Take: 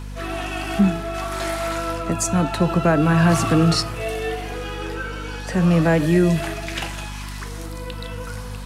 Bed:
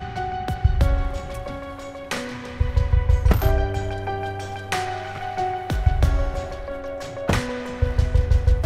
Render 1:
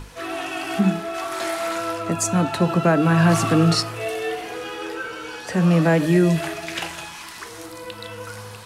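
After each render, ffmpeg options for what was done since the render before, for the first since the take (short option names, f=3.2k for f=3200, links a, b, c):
-af "bandreject=f=50:t=h:w=6,bandreject=f=100:t=h:w=6,bandreject=f=150:t=h:w=6,bandreject=f=200:t=h:w=6,bandreject=f=250:t=h:w=6"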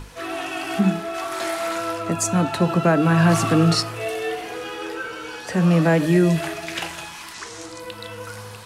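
-filter_complex "[0:a]asettb=1/sr,asplit=3[a][b][c];[a]atrim=end=7.344[d];[b]atrim=start=7.34:end=7.8,asetpts=PTS-STARTPTS,afade=t=in:d=0.004:c=qsin,afade=t=out:st=0.456:d=0.004:c=qsin,lowpass=f=7.1k:t=q:w=1.8[e];[c]atrim=start=7.796[f];[d][e]acrossfade=d=0.004:c1=hsin:c2=qsin[g];[g][f]acrossfade=d=0.004:c1=qsin:c2=hsin"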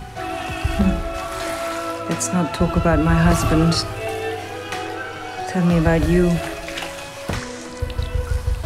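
-filter_complex "[1:a]volume=-4.5dB[a];[0:a][a]amix=inputs=2:normalize=0"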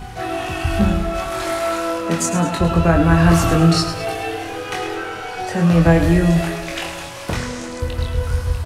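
-filter_complex "[0:a]asplit=2[a][b];[b]adelay=24,volume=-4dB[c];[a][c]amix=inputs=2:normalize=0,asplit=2[d][e];[e]aecho=0:1:106|212|318|424|530:0.316|0.149|0.0699|0.0328|0.0154[f];[d][f]amix=inputs=2:normalize=0"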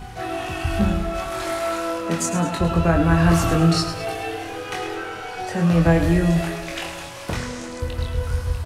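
-af "volume=-3.5dB"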